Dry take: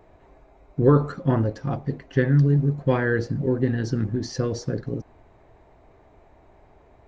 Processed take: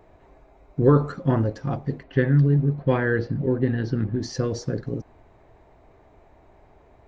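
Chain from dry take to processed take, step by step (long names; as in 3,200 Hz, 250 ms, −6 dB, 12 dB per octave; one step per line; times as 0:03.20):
0:02.03–0:04.19: low-pass filter 4,300 Hz 24 dB per octave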